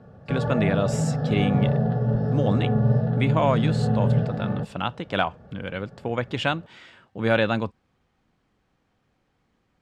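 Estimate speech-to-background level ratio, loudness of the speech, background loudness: -3.5 dB, -27.5 LUFS, -24.0 LUFS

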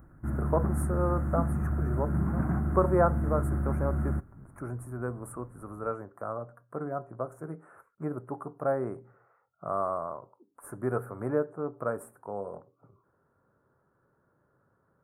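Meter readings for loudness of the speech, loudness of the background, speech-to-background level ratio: -33.5 LUFS, -30.5 LUFS, -3.0 dB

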